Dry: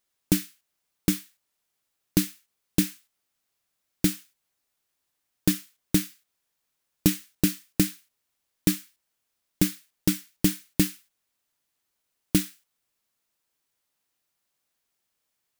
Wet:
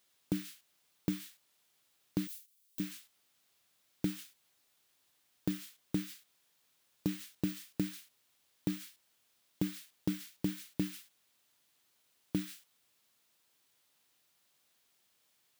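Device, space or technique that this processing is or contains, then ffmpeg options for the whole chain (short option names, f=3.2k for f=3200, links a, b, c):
broadcast voice chain: -filter_complex "[0:a]highpass=80,deesser=0.9,acompressor=threshold=-21dB:ratio=6,equalizer=f=3.5k:t=o:w=0.86:g=4,alimiter=level_in=0.5dB:limit=-24dB:level=0:latency=1:release=206,volume=-0.5dB,asettb=1/sr,asplit=3[a][b][c];[a]atrim=end=2.274[d];[b]atrim=start=2.27:end=2.8,asetpts=PTS-STARTPTS,afade=t=in:d=0.004:c=qsin,afade=t=out:st=0.526:d=0.004:c=qsin,aderivative[e];[c]atrim=start=2.796[f];[d][e]acrossfade=d=0.004:c1=hsin:c2=qsin[g];[g][f]acrossfade=d=0.004:c1=qsin:c2=hsin,volume=5dB"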